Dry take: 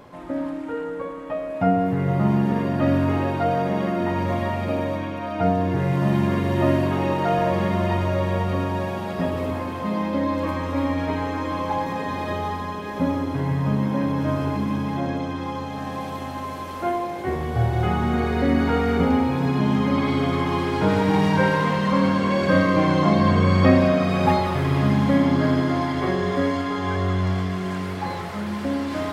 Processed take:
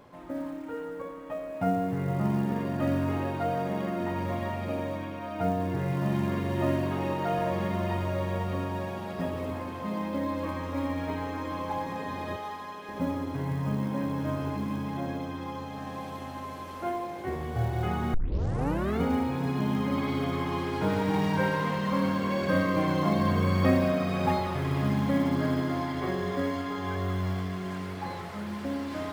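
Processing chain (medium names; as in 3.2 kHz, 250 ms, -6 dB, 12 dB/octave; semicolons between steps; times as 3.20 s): 12.36–12.89 s: high-pass 560 Hz 6 dB/octave; short-mantissa float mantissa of 4-bit; 18.14 s: tape start 0.87 s; trim -7.5 dB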